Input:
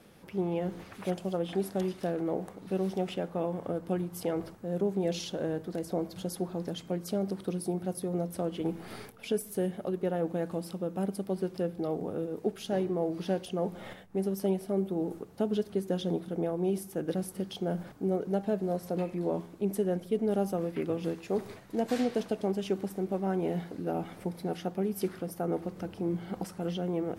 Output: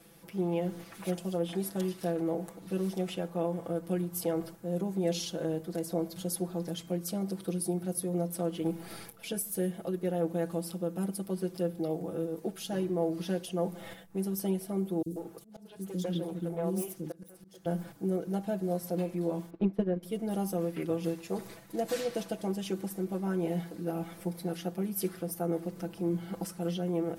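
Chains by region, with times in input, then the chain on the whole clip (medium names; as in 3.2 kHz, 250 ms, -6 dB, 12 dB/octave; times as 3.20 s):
15.02–17.66 s: self-modulated delay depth 0.1 ms + three bands offset in time highs, lows, mids 40/140 ms, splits 360/4000 Hz + slow attack 426 ms
19.50–20.03 s: distance through air 340 m + transient shaper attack +9 dB, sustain -9 dB
whole clip: treble shelf 6.4 kHz +12 dB; comb 6 ms, depth 87%; trim -4.5 dB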